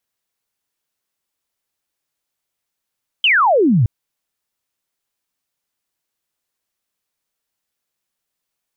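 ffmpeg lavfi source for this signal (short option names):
-f lavfi -i "aevalsrc='0.316*clip(t/0.002,0,1)*clip((0.62-t)/0.002,0,1)*sin(2*PI*3200*0.62/log(100/3200)*(exp(log(100/3200)*t/0.62)-1))':d=0.62:s=44100"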